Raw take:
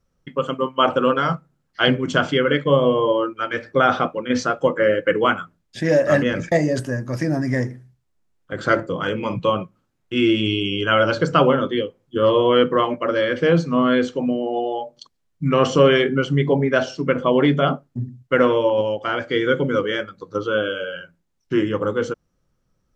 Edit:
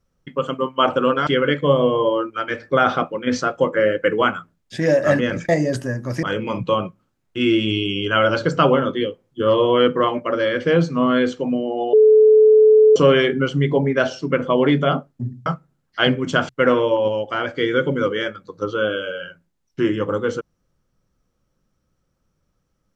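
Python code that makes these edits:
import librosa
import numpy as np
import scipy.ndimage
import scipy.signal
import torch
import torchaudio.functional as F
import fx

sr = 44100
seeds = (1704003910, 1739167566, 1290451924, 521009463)

y = fx.edit(x, sr, fx.move(start_s=1.27, length_s=1.03, to_s=18.22),
    fx.cut(start_s=7.26, length_s=1.73),
    fx.bleep(start_s=14.69, length_s=1.03, hz=432.0, db=-7.5), tone=tone)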